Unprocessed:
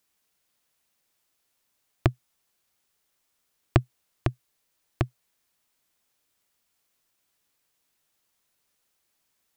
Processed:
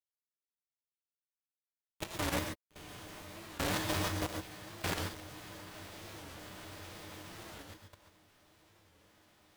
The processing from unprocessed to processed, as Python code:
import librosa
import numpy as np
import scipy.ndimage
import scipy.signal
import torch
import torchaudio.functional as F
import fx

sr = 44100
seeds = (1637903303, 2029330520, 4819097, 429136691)

p1 = fx.spec_steps(x, sr, hold_ms=400)
p2 = fx.bass_treble(p1, sr, bass_db=-8, treble_db=0)
p3 = fx.hum_notches(p2, sr, base_hz=60, count=3)
p4 = fx.stiff_resonator(p3, sr, f0_hz=91.0, decay_s=0.26, stiffness=0.03)
p5 = fx.rider(p4, sr, range_db=10, speed_s=0.5)
p6 = p4 + (p5 * librosa.db_to_amplitude(-0.5))
p7 = fx.quant_dither(p6, sr, seeds[0], bits=8, dither='none')
p8 = p7 + fx.echo_diffused(p7, sr, ms=952, feedback_pct=55, wet_db=-4.0, dry=0)
p9 = fx.level_steps(p8, sr, step_db=17)
p10 = fx.rev_gated(p9, sr, seeds[1], gate_ms=160, shape='rising', drr_db=3.0)
p11 = fx.formant_shift(p10, sr, semitones=5)
p12 = fx.record_warp(p11, sr, rpm=45.0, depth_cents=160.0)
y = p12 * librosa.db_to_amplitude(17.5)